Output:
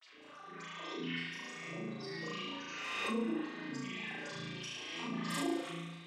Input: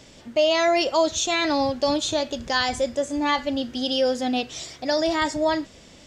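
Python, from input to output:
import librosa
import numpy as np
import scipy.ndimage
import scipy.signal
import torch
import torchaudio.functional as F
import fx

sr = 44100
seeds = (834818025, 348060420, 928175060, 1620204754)

y = fx.low_shelf(x, sr, hz=470.0, db=-8.5)
y = fx.hum_notches(y, sr, base_hz=50, count=6)
y = fx.over_compress(y, sr, threshold_db=-33.0, ratio=-1.0)
y = fx.rotary(y, sr, hz=5.0)
y = fx.filter_lfo_bandpass(y, sr, shape='sine', hz=7.4, low_hz=300.0, high_hz=4300.0, q=7.6)
y = fx.comb_fb(y, sr, f0_hz=150.0, decay_s=0.29, harmonics='all', damping=0.0, mix_pct=90)
y = fx.granulator(y, sr, seeds[0], grain_ms=100.0, per_s=20.0, spray_ms=100.0, spread_st=12)
y = fx.doubler(y, sr, ms=43.0, db=-13.0)
y = fx.room_flutter(y, sr, wall_m=6.1, rt60_s=1.3)
y = fx.rev_spring(y, sr, rt60_s=1.0, pass_ms=(36,), chirp_ms=55, drr_db=-8.5)
y = fx.pre_swell(y, sr, db_per_s=25.0)
y = y * 10.0 ** (3.5 / 20.0)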